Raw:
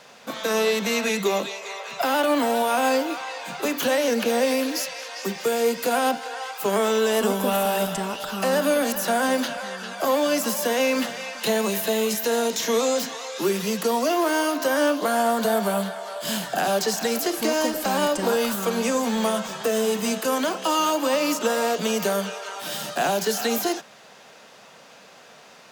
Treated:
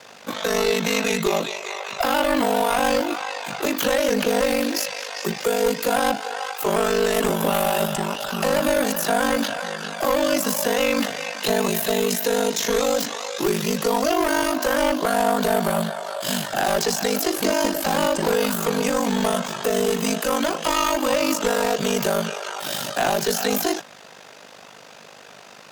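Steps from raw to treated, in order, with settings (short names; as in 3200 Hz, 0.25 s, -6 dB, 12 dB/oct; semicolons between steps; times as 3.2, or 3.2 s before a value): one-sided fold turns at -18 dBFS; ring modulator 25 Hz; in parallel at -5 dB: soft clip -28.5 dBFS, distortion -8 dB; on the sum: gain +3 dB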